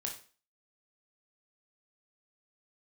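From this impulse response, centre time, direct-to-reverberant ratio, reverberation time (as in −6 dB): 21 ms, 0.5 dB, 0.40 s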